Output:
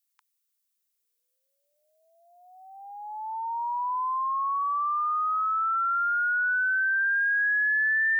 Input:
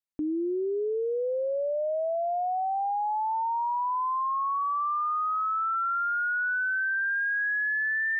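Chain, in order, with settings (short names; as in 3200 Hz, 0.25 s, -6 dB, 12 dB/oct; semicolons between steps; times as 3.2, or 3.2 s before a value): steep high-pass 910 Hz 72 dB/oct; tilt +4.5 dB/oct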